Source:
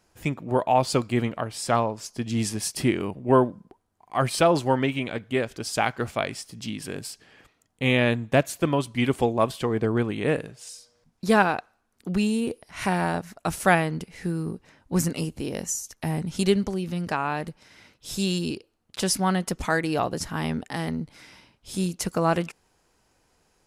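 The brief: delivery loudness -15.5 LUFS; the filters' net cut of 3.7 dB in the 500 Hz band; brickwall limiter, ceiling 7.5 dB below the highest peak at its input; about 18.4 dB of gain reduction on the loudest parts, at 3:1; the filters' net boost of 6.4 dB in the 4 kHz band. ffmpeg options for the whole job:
-af "equalizer=f=500:t=o:g=-5,equalizer=f=4000:t=o:g=8.5,acompressor=threshold=0.00794:ratio=3,volume=22.4,alimiter=limit=0.708:level=0:latency=1"

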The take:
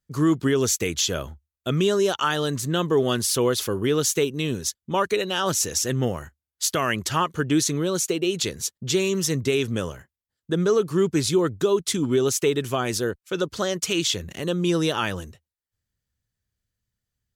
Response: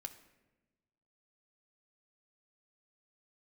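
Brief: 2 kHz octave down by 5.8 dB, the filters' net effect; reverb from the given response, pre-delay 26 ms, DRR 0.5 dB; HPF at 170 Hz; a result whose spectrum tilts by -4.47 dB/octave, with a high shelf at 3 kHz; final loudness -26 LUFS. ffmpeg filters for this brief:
-filter_complex "[0:a]highpass=170,equalizer=f=2000:t=o:g=-5.5,highshelf=f=3000:g=-6.5,asplit=2[s0][s1];[1:a]atrim=start_sample=2205,adelay=26[s2];[s1][s2]afir=irnorm=-1:irlink=0,volume=1.5[s3];[s0][s3]amix=inputs=2:normalize=0,volume=0.708"

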